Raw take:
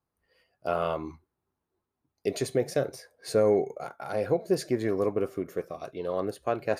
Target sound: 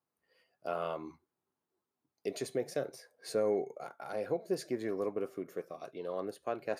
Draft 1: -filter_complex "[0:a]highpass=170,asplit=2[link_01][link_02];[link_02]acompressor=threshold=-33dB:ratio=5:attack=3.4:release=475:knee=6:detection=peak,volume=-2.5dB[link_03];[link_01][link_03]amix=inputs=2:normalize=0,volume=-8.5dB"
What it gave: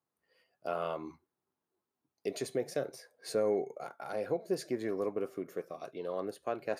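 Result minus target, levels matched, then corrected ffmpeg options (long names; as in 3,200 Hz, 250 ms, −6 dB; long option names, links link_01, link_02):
downward compressor: peak gain reduction −6 dB
-filter_complex "[0:a]highpass=170,asplit=2[link_01][link_02];[link_02]acompressor=threshold=-40.5dB:ratio=5:attack=3.4:release=475:knee=6:detection=peak,volume=-2.5dB[link_03];[link_01][link_03]amix=inputs=2:normalize=0,volume=-8.5dB"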